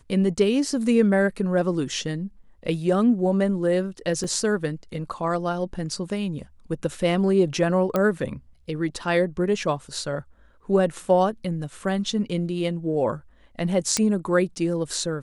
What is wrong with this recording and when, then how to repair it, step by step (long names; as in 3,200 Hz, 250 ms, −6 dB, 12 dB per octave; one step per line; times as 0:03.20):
0:04.24: drop-out 3.7 ms
0:07.96: click −10 dBFS
0:13.97: click −7 dBFS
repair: click removal
repair the gap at 0:04.24, 3.7 ms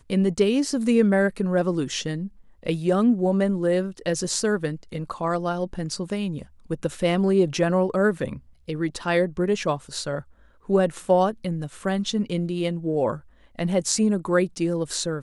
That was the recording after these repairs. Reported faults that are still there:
none of them is left